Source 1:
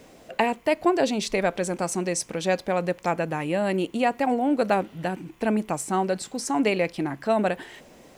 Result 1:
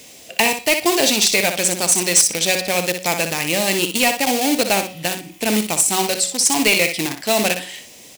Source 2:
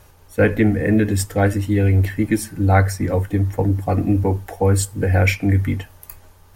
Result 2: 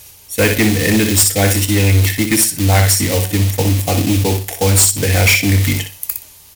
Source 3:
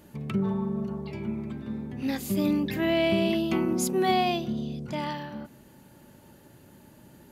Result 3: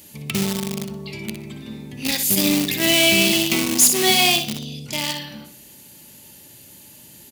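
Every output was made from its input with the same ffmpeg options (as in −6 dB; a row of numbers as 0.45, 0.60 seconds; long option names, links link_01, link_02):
-filter_complex "[0:a]asplit=2[link_01][link_02];[link_02]acrusher=bits=3:mix=0:aa=0.000001,volume=-9dB[link_03];[link_01][link_03]amix=inputs=2:normalize=0,highpass=45,bandreject=frequency=185:width_type=h:width=4,bandreject=frequency=370:width_type=h:width=4,bandreject=frequency=555:width_type=h:width=4,bandreject=frequency=740:width_type=h:width=4,bandreject=frequency=925:width_type=h:width=4,bandreject=frequency=1110:width_type=h:width=4,bandreject=frequency=1295:width_type=h:width=4,bandreject=frequency=1480:width_type=h:width=4,bandreject=frequency=1665:width_type=h:width=4,bandreject=frequency=1850:width_type=h:width=4,bandreject=frequency=2035:width_type=h:width=4,bandreject=frequency=2220:width_type=h:width=4,bandreject=frequency=2405:width_type=h:width=4,bandreject=frequency=2590:width_type=h:width=4,bandreject=frequency=2775:width_type=h:width=4,bandreject=frequency=2960:width_type=h:width=4,bandreject=frequency=3145:width_type=h:width=4,bandreject=frequency=3330:width_type=h:width=4,bandreject=frequency=3515:width_type=h:width=4,bandreject=frequency=3700:width_type=h:width=4,bandreject=frequency=3885:width_type=h:width=4,bandreject=frequency=4070:width_type=h:width=4,bandreject=frequency=4255:width_type=h:width=4,bandreject=frequency=4440:width_type=h:width=4,bandreject=frequency=4625:width_type=h:width=4,bandreject=frequency=4810:width_type=h:width=4,bandreject=frequency=4995:width_type=h:width=4,bandreject=frequency=5180:width_type=h:width=4,bandreject=frequency=5365:width_type=h:width=4,bandreject=frequency=5550:width_type=h:width=4,bandreject=frequency=5735:width_type=h:width=4,bandreject=frequency=5920:width_type=h:width=4,asplit=2[link_04][link_05];[link_05]aecho=0:1:61|122|183:0.376|0.0677|0.0122[link_06];[link_04][link_06]amix=inputs=2:normalize=0,aexciter=amount=5.1:drive=5.1:freq=2100,asoftclip=type=hard:threshold=-7.5dB"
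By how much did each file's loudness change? +8.5, +5.5, +10.5 LU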